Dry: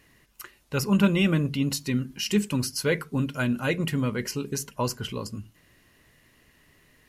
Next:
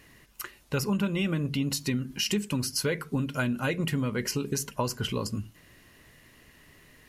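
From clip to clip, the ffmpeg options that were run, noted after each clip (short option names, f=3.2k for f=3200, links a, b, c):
-af "acompressor=threshold=-29dB:ratio=6,volume=4dB"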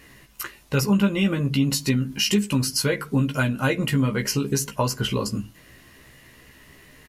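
-filter_complex "[0:a]asplit=2[a][b];[b]adelay=15,volume=-4dB[c];[a][c]amix=inputs=2:normalize=0,volume=4.5dB"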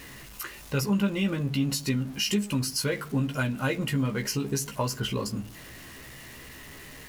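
-af "aeval=exprs='val(0)+0.5*0.0168*sgn(val(0))':c=same,volume=-6dB"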